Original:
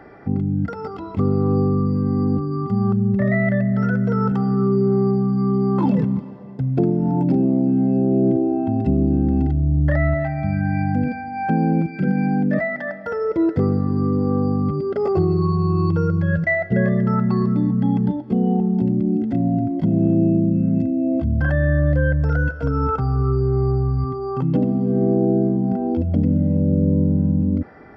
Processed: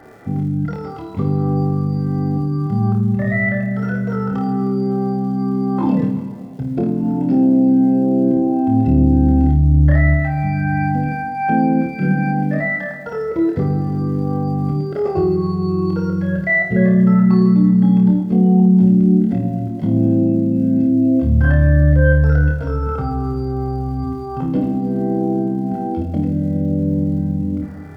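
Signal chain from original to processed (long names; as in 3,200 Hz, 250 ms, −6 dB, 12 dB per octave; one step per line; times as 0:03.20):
surface crackle 220 per second −44 dBFS
flutter between parallel walls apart 4.6 metres, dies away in 0.42 s
convolution reverb RT60 2.0 s, pre-delay 68 ms, DRR 14 dB
level −1 dB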